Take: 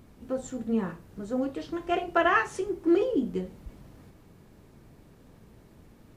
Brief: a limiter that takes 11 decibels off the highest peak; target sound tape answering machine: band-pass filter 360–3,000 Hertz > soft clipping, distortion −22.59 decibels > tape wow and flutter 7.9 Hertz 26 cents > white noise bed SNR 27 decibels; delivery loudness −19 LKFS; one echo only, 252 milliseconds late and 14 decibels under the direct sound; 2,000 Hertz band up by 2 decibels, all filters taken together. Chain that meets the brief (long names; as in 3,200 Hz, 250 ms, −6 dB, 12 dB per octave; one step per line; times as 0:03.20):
parametric band 2,000 Hz +3 dB
brickwall limiter −20.5 dBFS
band-pass filter 360–3,000 Hz
single-tap delay 252 ms −14 dB
soft clipping −21.5 dBFS
tape wow and flutter 7.9 Hz 26 cents
white noise bed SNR 27 dB
level +16 dB